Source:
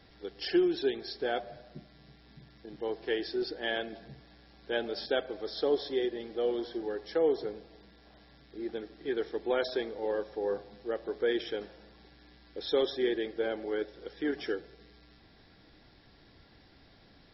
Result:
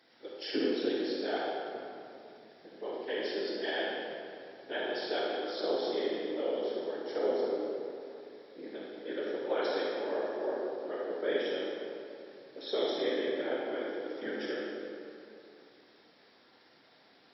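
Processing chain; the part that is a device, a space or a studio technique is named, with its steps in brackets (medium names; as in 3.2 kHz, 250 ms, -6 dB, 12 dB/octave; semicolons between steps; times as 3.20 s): whispering ghost (whisper effect; high-pass 340 Hz 12 dB/octave; reverberation RT60 2.6 s, pre-delay 29 ms, DRR -4 dB); trim -5 dB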